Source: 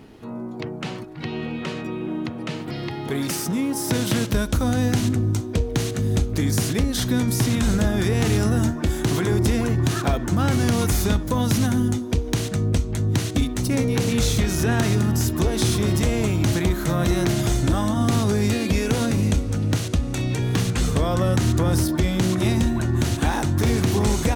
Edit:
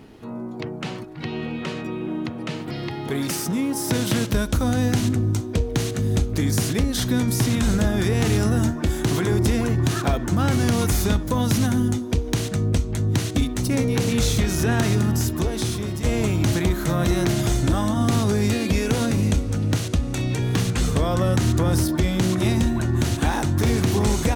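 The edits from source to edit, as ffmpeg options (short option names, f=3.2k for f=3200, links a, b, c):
-filter_complex "[0:a]asplit=2[a][b];[a]atrim=end=16.04,asetpts=PTS-STARTPTS,afade=t=out:st=15.09:d=0.95:silence=0.354813[c];[b]atrim=start=16.04,asetpts=PTS-STARTPTS,afade=t=in:d=0.004:c=hsin:silence=0.354813[d];[c][d]concat=n=2:v=0:a=1"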